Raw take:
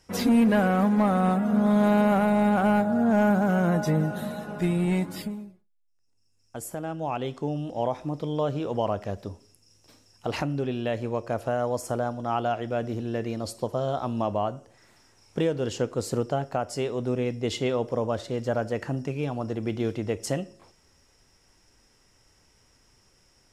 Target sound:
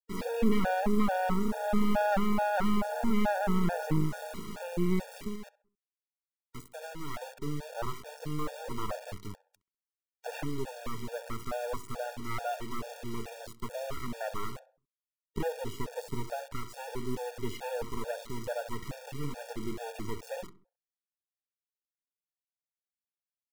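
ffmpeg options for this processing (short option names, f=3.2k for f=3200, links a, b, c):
-filter_complex "[0:a]acrossover=split=2600[a][b];[b]acompressor=threshold=-49dB:ratio=4:attack=1:release=60[c];[a][c]amix=inputs=2:normalize=0,aeval=exprs='max(val(0),0)':c=same,acrusher=bits=4:dc=4:mix=0:aa=0.000001,asplit=2[d][e];[e]adelay=66,lowpass=f=1.8k:p=1,volume=-15.5dB,asplit=2[f][g];[g]adelay=66,lowpass=f=1.8k:p=1,volume=0.4,asplit=2[h][i];[i]adelay=66,lowpass=f=1.8k:p=1,volume=0.4,asplit=2[j][k];[k]adelay=66,lowpass=f=1.8k:p=1,volume=0.4[l];[f][h][j][l]amix=inputs=4:normalize=0[m];[d][m]amix=inputs=2:normalize=0,afftfilt=real='re*gt(sin(2*PI*2.3*pts/sr)*(1-2*mod(floor(b*sr/1024/470),2)),0)':imag='im*gt(sin(2*PI*2.3*pts/sr)*(1-2*mod(floor(b*sr/1024/470),2)),0)':win_size=1024:overlap=0.75"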